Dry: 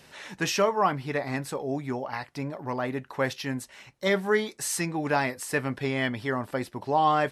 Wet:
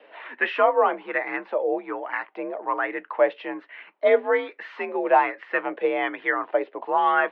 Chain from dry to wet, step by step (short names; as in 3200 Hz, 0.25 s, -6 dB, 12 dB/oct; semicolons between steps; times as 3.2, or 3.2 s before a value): mistuned SSB +56 Hz 250–3000 Hz; LFO bell 1.2 Hz 500–1900 Hz +11 dB